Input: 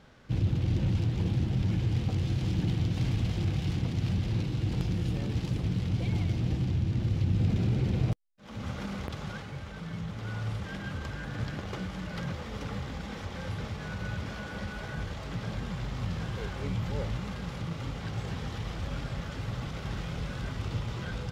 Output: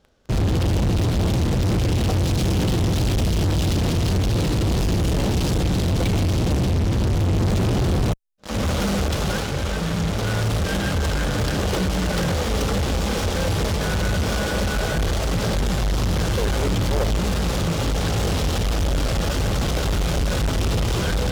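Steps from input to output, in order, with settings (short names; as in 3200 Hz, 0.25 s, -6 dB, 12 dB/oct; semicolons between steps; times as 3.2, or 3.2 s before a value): graphic EQ 125/250/1000/2000/4000 Hz -11/-5/-7/-10/-3 dB; in parallel at -6 dB: fuzz box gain 48 dB, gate -52 dBFS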